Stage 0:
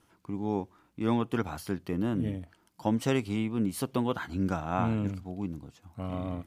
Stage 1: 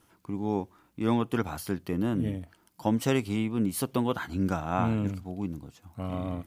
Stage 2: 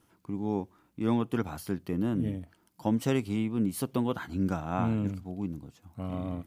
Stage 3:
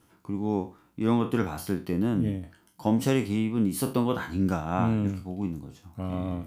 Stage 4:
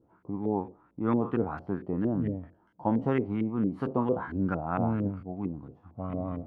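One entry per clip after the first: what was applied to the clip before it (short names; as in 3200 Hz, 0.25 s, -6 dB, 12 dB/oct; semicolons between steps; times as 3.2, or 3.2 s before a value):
high shelf 12000 Hz +10 dB; gain +1.5 dB
bell 190 Hz +4 dB 2.6 oct; gain -4.5 dB
spectral trails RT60 0.31 s; gain +3 dB
LFO low-pass saw up 4.4 Hz 420–1900 Hz; gain -4 dB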